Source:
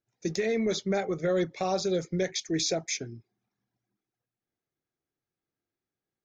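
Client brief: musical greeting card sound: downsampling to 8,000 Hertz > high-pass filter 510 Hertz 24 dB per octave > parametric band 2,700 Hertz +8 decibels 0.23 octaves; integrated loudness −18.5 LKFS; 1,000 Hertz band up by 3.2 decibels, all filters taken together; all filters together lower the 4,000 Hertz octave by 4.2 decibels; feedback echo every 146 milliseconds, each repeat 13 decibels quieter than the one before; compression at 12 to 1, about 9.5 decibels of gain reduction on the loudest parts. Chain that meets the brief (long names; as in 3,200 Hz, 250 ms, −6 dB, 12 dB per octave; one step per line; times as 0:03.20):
parametric band 1,000 Hz +5.5 dB
parametric band 4,000 Hz −6 dB
downward compressor 12 to 1, threshold −32 dBFS
repeating echo 146 ms, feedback 22%, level −13 dB
downsampling to 8,000 Hz
high-pass filter 510 Hz 24 dB per octave
parametric band 2,700 Hz +8 dB 0.23 octaves
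level +23.5 dB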